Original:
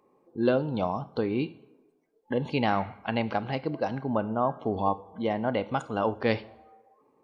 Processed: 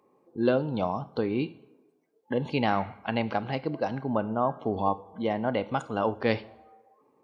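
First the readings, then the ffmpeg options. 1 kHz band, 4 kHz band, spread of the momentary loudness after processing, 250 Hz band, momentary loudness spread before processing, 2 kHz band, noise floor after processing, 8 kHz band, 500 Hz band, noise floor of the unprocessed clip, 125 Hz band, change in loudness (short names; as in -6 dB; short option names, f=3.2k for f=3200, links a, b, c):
0.0 dB, 0.0 dB, 5 LU, 0.0 dB, 5 LU, 0.0 dB, -68 dBFS, n/a, 0.0 dB, -68 dBFS, -0.5 dB, 0.0 dB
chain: -af "highpass=63"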